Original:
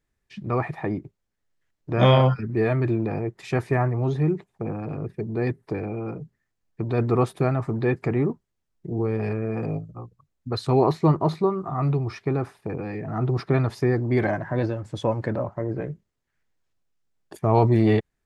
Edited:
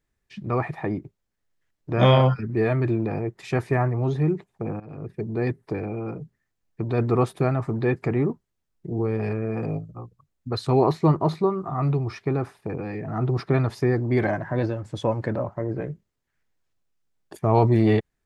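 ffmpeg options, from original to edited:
ffmpeg -i in.wav -filter_complex "[0:a]asplit=2[link_01][link_02];[link_01]atrim=end=4.8,asetpts=PTS-STARTPTS,afade=type=out:start_time=4.796:duration=0.004:curve=hsin:silence=0.16788[link_03];[link_02]atrim=start=4.8,asetpts=PTS-STARTPTS,afade=type=in:duration=0.41:silence=0.16788[link_04];[link_03][link_04]concat=n=2:v=0:a=1" out.wav

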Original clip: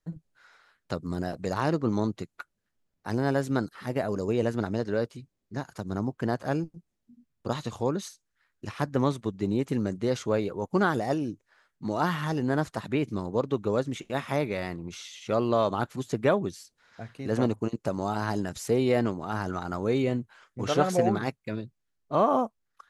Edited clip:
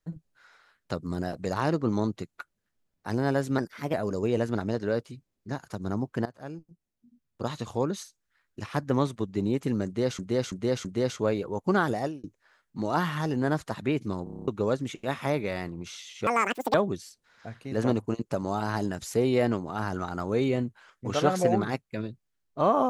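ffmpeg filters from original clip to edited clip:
ffmpeg -i in.wav -filter_complex "[0:a]asplit=18[link_01][link_02][link_03][link_04][link_05][link_06][link_07][link_08][link_09][link_10][link_11][link_12][link_13][link_14][link_15][link_16][link_17][link_18];[link_01]atrim=end=3.584[link_19];[link_02]atrim=start=3.58:end=3.99,asetpts=PTS-STARTPTS,asetrate=50715,aresample=44100[link_20];[link_03]atrim=start=3.986:end=6.31,asetpts=PTS-STARTPTS,afade=type=out:start_time=2.32:duration=0.004:curve=hsin:silence=0.141254[link_21];[link_04]atrim=start=6.31:end=10.242,asetpts=PTS-STARTPTS,afade=type=in:duration=1.51:silence=0.141254[link_22];[link_05]atrim=start=9.908:end=10.242[link_23];[link_06]atrim=start=9.908:end=10.242[link_24];[link_07]atrim=start=9.908:end=11.3,asetpts=PTS-STARTPTS,afade=type=out:start_time=1.132:duration=0.26[link_25];[link_08]atrim=start=11.3:end=13.332,asetpts=PTS-STARTPTS,afade=type=in:duration=0.004:curve=hsin[link_26];[link_09]atrim=start=13.298:end=13.332[link_27];[link_10]atrim=start=13.298:end=13.332[link_28];[link_11]atrim=start=13.298:end=13.332[link_29];[link_12]atrim=start=13.298:end=13.332[link_30];[link_13]atrim=start=13.298:end=13.332[link_31];[link_14]atrim=start=13.298:end=13.332[link_32];[link_15]atrim=start=13.298:end=13.332[link_33];[link_16]atrim=start=13.538:end=15.334[link_34];[link_17]atrim=start=15.33:end=16.28,asetpts=PTS-STARTPTS,asetrate=88200,aresample=44100[link_35];[link_18]atrim=start=16.276[link_36];[link_19][link_20]acrossfade=duration=0.004:curve1=hsin:curve2=hsin[link_37];[link_21][link_22]concat=n=2:v=0:a=1[link_38];[link_37][link_38]acrossfade=duration=0.004:curve1=hsin:curve2=hsin[link_39];[link_39][link_23]acrossfade=duration=0.004:curve1=hsin:curve2=hsin[link_40];[link_40][link_24]acrossfade=duration=0.004:curve1=hsin:curve2=hsin[link_41];[link_25][link_26]concat=n=2:v=0:a=1[link_42];[link_41][link_42]acrossfade=duration=0.004:curve1=hsin:curve2=hsin[link_43];[link_43][link_27]acrossfade=duration=0.004:curve1=hsin:curve2=hsin[link_44];[link_44][link_28]acrossfade=duration=0.004:curve1=hsin:curve2=hsin[link_45];[link_45][link_29]acrossfade=duration=0.004:curve1=hsin:curve2=hsin[link_46];[link_46][link_30]acrossfade=duration=0.004:curve1=hsin:curve2=hsin[link_47];[link_47][link_31]acrossfade=duration=0.004:curve1=hsin:curve2=hsin[link_48];[link_48][link_32]acrossfade=duration=0.004:curve1=hsin:curve2=hsin[link_49];[link_49][link_33]acrossfade=duration=0.004:curve1=hsin:curve2=hsin[link_50];[link_50][link_34]acrossfade=duration=0.004:curve1=hsin:curve2=hsin[link_51];[link_51][link_35]acrossfade=duration=0.004:curve1=hsin:curve2=hsin[link_52];[link_52][link_36]acrossfade=duration=0.004:curve1=hsin:curve2=hsin" out.wav

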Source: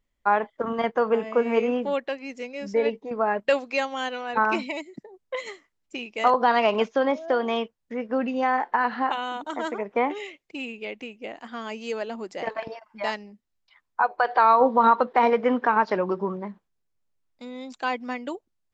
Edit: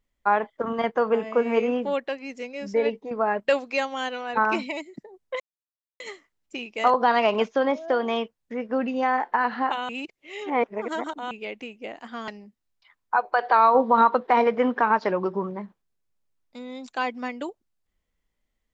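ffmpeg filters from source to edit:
ffmpeg -i in.wav -filter_complex "[0:a]asplit=5[link_01][link_02][link_03][link_04][link_05];[link_01]atrim=end=5.4,asetpts=PTS-STARTPTS,afade=type=out:start_time=5.396:duration=0.004:curve=hsin,apad=pad_dur=0.6[link_06];[link_02]atrim=start=5.4:end=9.292,asetpts=PTS-STARTPTS,afade=type=in:duration=0.004:curve=hsin[link_07];[link_03]atrim=start=9.288:end=10.712,asetpts=PTS-STARTPTS,areverse[link_08];[link_04]atrim=start=10.708:end=11.682[link_09];[link_05]atrim=start=13.138[link_10];[link_06][link_07]concat=n=2:v=0:a=1[link_11];[link_11][link_08]acrossfade=duration=0.004:curve1=hsin:curve2=hsin[link_12];[link_12][link_09]acrossfade=duration=0.004:curve1=hsin:curve2=hsin[link_13];[link_13][link_10]acrossfade=duration=0.004:curve1=hsin:curve2=hsin" out.wav

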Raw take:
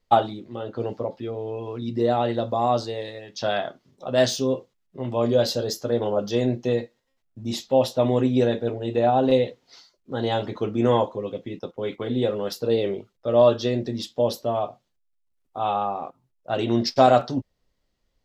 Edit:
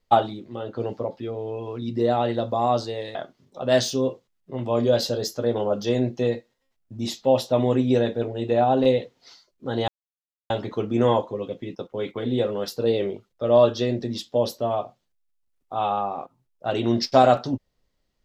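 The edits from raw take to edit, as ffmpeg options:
ffmpeg -i in.wav -filter_complex "[0:a]asplit=3[link_01][link_02][link_03];[link_01]atrim=end=3.152[link_04];[link_02]atrim=start=3.608:end=10.34,asetpts=PTS-STARTPTS,afade=type=out:start_time=6.728:duration=0.004:curve=hsin,apad=pad_dur=0.62[link_05];[link_03]atrim=start=10.34,asetpts=PTS-STARTPTS,afade=type=in:duration=0.004:curve=hsin[link_06];[link_05][link_06]concat=n=2:v=0:a=1[link_07];[link_04][link_07]acrossfade=duration=0.004:curve1=hsin:curve2=hsin" out.wav

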